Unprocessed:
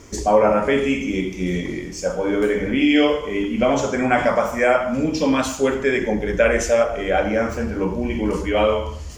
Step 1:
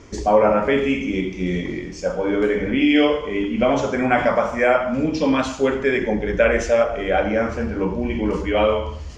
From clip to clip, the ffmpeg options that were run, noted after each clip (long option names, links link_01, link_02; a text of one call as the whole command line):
ffmpeg -i in.wav -af "lowpass=4700" out.wav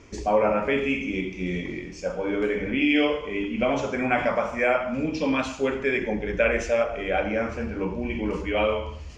ffmpeg -i in.wav -af "equalizer=frequency=2500:width=4.2:gain=7.5,volume=-6dB" out.wav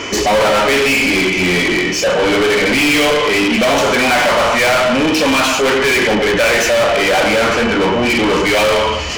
ffmpeg -i in.wav -filter_complex "[0:a]asplit=2[link_01][link_02];[link_02]highpass=frequency=720:poles=1,volume=36dB,asoftclip=type=tanh:threshold=-8.5dB[link_03];[link_01][link_03]amix=inputs=2:normalize=0,lowpass=frequency=6500:poles=1,volume=-6dB,aeval=exprs='val(0)+0.0282*sin(2*PI*3000*n/s)':channel_layout=same,volume=2dB" out.wav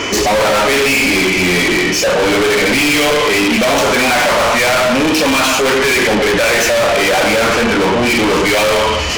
ffmpeg -i in.wav -af "asoftclip=type=tanh:threshold=-17dB,volume=6dB" out.wav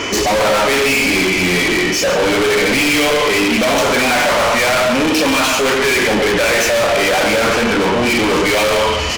ffmpeg -i in.wav -af "aecho=1:1:139:0.251,volume=-2dB" out.wav